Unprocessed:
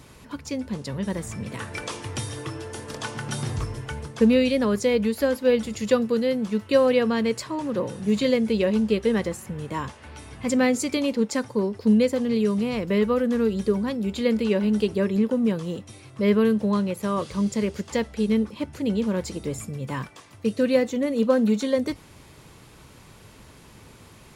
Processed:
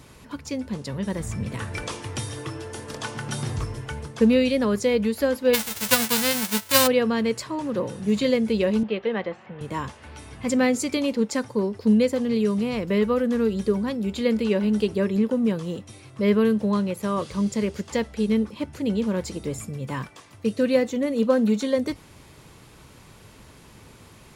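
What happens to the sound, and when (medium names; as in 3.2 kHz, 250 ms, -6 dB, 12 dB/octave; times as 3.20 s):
1.20–1.95 s: bass shelf 100 Hz +12 dB
5.53–6.86 s: formants flattened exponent 0.1
8.83–9.61 s: cabinet simulation 230–3400 Hz, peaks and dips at 260 Hz -9 dB, 410 Hz -4 dB, 710 Hz +5 dB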